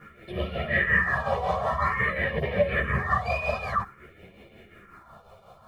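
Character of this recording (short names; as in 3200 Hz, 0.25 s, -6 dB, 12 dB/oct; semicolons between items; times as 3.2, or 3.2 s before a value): phasing stages 4, 0.51 Hz, lowest notch 300–1300 Hz; a quantiser's noise floor 12-bit, dither none; tremolo triangle 5.5 Hz, depth 65%; a shimmering, thickened sound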